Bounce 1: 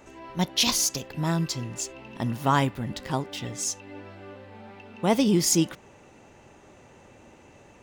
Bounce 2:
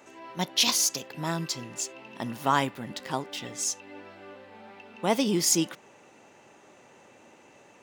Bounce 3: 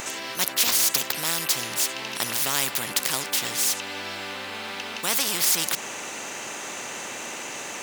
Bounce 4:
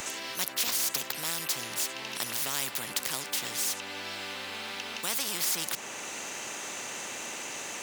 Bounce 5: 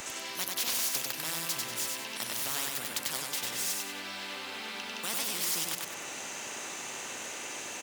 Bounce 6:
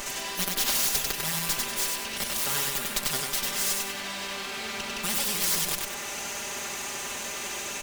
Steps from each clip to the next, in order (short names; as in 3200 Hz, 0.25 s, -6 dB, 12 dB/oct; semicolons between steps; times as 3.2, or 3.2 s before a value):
HPF 160 Hz 12 dB/oct; low shelf 400 Hz -5.5 dB
tilt +3 dB/oct; spectral compressor 4:1; gain -1 dB
three-band squash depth 40%; gain -7 dB
feedback echo 96 ms, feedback 39%, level -3 dB; gain -3.5 dB
minimum comb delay 5 ms; gain +7 dB